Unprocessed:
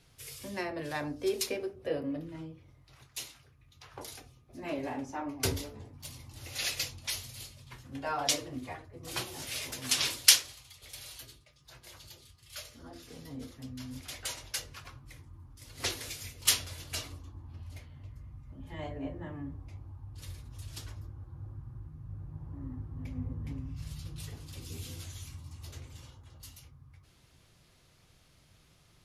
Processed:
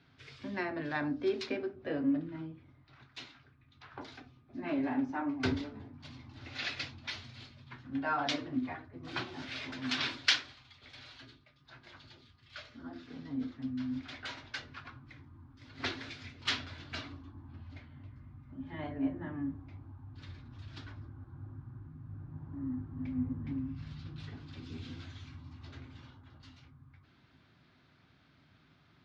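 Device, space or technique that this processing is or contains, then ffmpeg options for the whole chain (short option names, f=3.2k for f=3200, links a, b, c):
guitar cabinet: -af "highpass=97,equalizer=f=260:t=q:w=4:g=9,equalizer=f=500:t=q:w=4:g=-8,equalizer=f=1.5k:t=q:w=4:g=6,equalizer=f=2.9k:t=q:w=4:g=-4,lowpass=f=3.9k:w=0.5412,lowpass=f=3.9k:w=1.3066"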